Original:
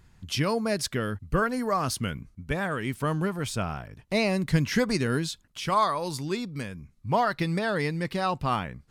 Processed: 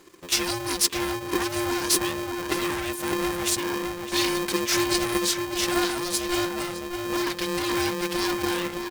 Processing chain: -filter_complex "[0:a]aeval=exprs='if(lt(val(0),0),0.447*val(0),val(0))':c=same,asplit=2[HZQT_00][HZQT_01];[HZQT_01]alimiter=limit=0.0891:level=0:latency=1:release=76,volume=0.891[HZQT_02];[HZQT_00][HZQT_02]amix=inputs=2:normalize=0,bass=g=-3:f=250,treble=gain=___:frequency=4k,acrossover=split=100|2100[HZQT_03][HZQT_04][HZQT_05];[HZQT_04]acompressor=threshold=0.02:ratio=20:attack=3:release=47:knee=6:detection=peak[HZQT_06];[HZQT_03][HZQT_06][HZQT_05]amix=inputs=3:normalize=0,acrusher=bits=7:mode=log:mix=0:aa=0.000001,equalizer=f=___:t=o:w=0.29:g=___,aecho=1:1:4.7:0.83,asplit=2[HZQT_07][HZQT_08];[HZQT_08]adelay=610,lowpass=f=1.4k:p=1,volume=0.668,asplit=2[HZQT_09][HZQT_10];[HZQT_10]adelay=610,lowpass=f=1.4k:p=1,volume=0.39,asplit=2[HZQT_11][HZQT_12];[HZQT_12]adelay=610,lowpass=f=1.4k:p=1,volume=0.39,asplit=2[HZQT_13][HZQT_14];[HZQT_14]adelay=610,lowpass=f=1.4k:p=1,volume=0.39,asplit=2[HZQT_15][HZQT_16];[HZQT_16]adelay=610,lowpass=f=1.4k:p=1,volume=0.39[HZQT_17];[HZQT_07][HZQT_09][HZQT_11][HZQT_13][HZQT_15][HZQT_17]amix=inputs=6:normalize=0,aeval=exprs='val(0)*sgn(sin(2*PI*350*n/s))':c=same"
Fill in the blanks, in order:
7, 210, -12